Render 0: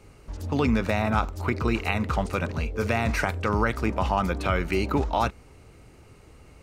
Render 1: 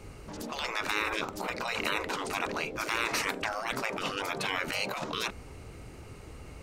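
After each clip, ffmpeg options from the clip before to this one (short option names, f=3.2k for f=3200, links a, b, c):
-af "afftfilt=real='re*lt(hypot(re,im),0.0891)':imag='im*lt(hypot(re,im),0.0891)':win_size=1024:overlap=0.75,volume=4.5dB"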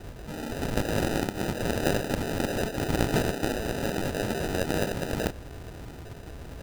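-af "acrusher=samples=40:mix=1:aa=0.000001,volume=5dB"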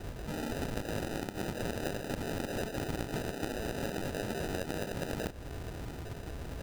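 -af "acompressor=threshold=-32dB:ratio=6"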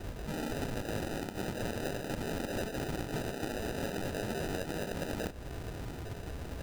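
-filter_complex "[0:a]asplit=2[a][b];[b]aeval=exprs='0.0355*(abs(mod(val(0)/0.0355+3,4)-2)-1)':c=same,volume=-8.5dB[c];[a][c]amix=inputs=2:normalize=0,flanger=delay=3.1:depth=8.4:regen=-75:speed=0.39:shape=triangular,volume=2dB"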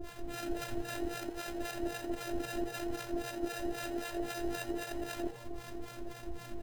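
-filter_complex "[0:a]afftfilt=real='hypot(re,im)*cos(PI*b)':imag='0':win_size=512:overlap=0.75,acrossover=split=720[a][b];[a]aeval=exprs='val(0)*(1-1/2+1/2*cos(2*PI*3.8*n/s))':c=same[c];[b]aeval=exprs='val(0)*(1-1/2-1/2*cos(2*PI*3.8*n/s))':c=same[d];[c][d]amix=inputs=2:normalize=0,asplit=6[e][f][g][h][i][j];[f]adelay=85,afreqshift=120,volume=-15.5dB[k];[g]adelay=170,afreqshift=240,volume=-20.9dB[l];[h]adelay=255,afreqshift=360,volume=-26.2dB[m];[i]adelay=340,afreqshift=480,volume=-31.6dB[n];[j]adelay=425,afreqshift=600,volume=-36.9dB[o];[e][k][l][m][n][o]amix=inputs=6:normalize=0,volume=6.5dB"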